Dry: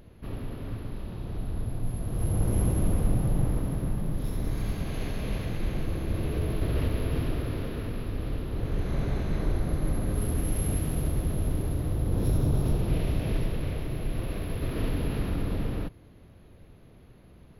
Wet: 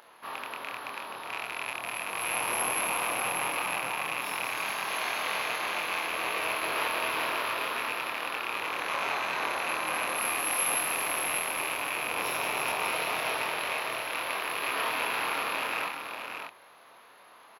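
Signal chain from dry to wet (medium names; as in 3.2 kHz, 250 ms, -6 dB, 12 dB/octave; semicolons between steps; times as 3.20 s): rattle on loud lows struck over -30 dBFS, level -29 dBFS; resonant high-pass 1 kHz, resonance Q 2.3; doubling 25 ms -3.5 dB; on a send: delay 588 ms -6 dB; on the sum: trim +6.5 dB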